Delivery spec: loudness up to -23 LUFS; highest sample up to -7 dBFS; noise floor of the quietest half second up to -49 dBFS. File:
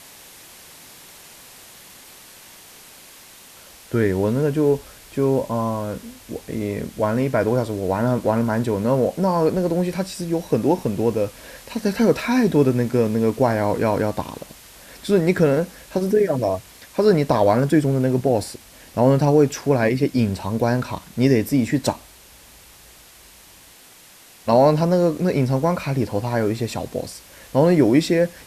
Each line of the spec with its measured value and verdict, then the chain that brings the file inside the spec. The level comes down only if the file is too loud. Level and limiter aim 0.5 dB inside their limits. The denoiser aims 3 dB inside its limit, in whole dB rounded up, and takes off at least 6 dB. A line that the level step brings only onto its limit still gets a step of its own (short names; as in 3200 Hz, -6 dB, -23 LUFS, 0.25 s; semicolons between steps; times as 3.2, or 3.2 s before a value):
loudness -20.5 LUFS: fail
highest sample -5.0 dBFS: fail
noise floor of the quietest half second -48 dBFS: fail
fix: gain -3 dB